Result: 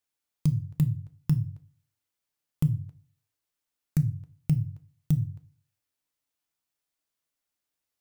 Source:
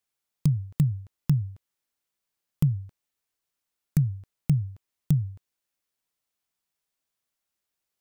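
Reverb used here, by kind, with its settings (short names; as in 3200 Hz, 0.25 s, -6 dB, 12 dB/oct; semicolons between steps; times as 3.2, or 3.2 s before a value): FDN reverb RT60 0.34 s, low-frequency decay 1.55×, high-frequency decay 1×, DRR 8.5 dB; gain -2.5 dB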